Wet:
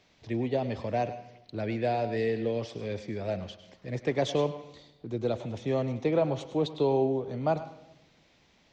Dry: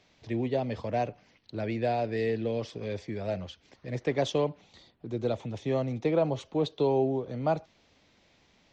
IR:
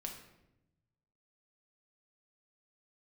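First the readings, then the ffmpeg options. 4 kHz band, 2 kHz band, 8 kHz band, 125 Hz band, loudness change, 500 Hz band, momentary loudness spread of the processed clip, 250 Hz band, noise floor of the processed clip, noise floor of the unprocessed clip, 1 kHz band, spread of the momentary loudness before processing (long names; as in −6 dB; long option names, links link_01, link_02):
+0.5 dB, +0.5 dB, can't be measured, 0.0 dB, 0.0 dB, +0.5 dB, 13 LU, 0.0 dB, −64 dBFS, −65 dBFS, +0.5 dB, 10 LU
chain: -filter_complex "[0:a]asplit=2[link_01][link_02];[1:a]atrim=start_sample=2205,lowshelf=frequency=320:gain=-8.5,adelay=103[link_03];[link_02][link_03]afir=irnorm=-1:irlink=0,volume=-8.5dB[link_04];[link_01][link_04]amix=inputs=2:normalize=0"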